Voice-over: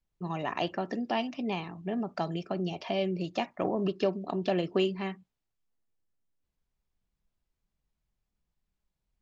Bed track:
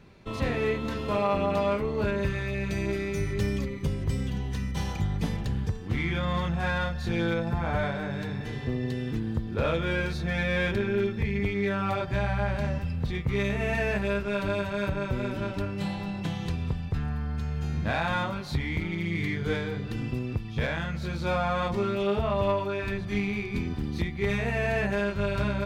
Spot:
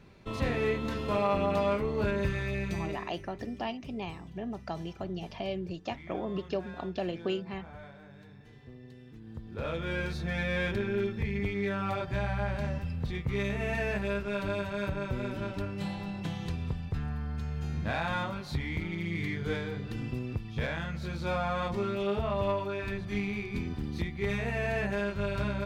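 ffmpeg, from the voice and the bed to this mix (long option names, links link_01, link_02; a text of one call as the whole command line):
ffmpeg -i stem1.wav -i stem2.wav -filter_complex "[0:a]adelay=2500,volume=-5dB[link_01];[1:a]volume=13.5dB,afade=type=out:start_time=2.55:duration=0.61:silence=0.133352,afade=type=in:start_time=9.18:duration=0.9:silence=0.16788[link_02];[link_01][link_02]amix=inputs=2:normalize=0" out.wav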